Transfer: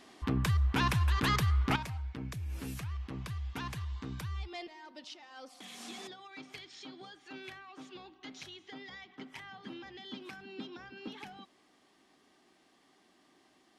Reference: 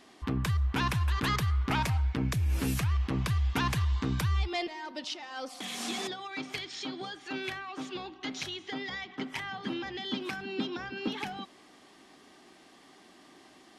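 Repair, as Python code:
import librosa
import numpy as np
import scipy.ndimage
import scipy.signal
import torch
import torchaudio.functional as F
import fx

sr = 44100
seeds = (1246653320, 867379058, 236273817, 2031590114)

y = fx.gain(x, sr, db=fx.steps((0.0, 0.0), (1.76, 10.5)))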